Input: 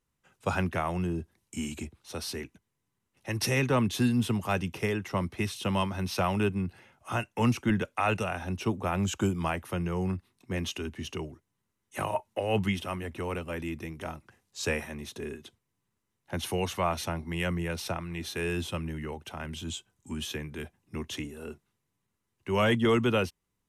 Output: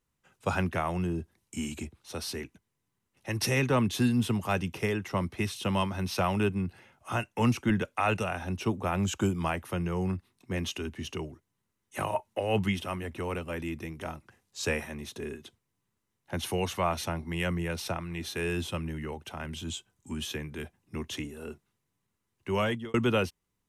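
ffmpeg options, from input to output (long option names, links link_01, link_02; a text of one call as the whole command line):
ffmpeg -i in.wav -filter_complex "[0:a]asplit=2[link_01][link_02];[link_01]atrim=end=22.94,asetpts=PTS-STARTPTS,afade=type=out:start_time=22.49:duration=0.45[link_03];[link_02]atrim=start=22.94,asetpts=PTS-STARTPTS,afade=type=in:duration=0.004:curve=hsin[link_04];[link_03][link_04]concat=n=2:v=0:a=1" out.wav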